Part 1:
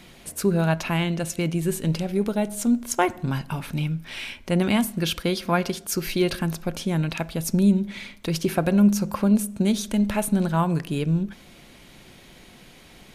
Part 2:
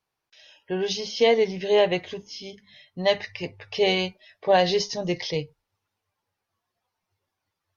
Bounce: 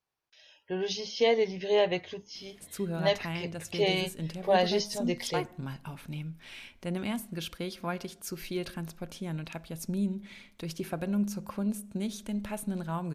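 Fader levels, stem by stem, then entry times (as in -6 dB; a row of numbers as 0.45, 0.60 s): -12.0, -5.5 dB; 2.35, 0.00 s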